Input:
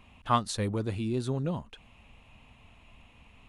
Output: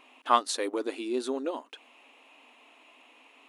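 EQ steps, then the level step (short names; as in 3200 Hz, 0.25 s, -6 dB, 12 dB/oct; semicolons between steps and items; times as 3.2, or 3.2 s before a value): brick-wall FIR high-pass 250 Hz; +3.5 dB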